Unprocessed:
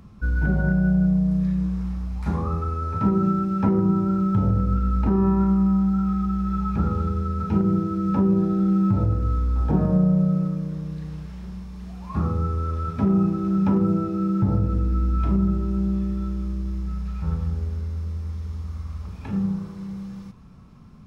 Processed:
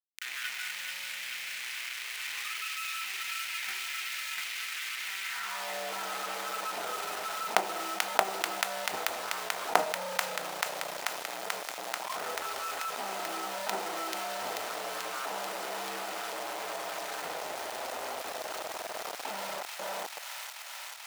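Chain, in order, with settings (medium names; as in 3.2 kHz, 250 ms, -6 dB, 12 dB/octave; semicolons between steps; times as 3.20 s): peaking EQ 120 Hz -7 dB 0.99 oct; reverb removal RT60 0.99 s; companded quantiser 2-bit; de-hum 64.05 Hz, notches 5; gate -22 dBFS, range -23 dB; comb of notches 560 Hz; bit crusher 9-bit; high-pass sweep 2.2 kHz -> 640 Hz, 5.24–5.76 s; feedback echo behind a high-pass 437 ms, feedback 71%, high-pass 1.8 kHz, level -5 dB; level flattener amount 50%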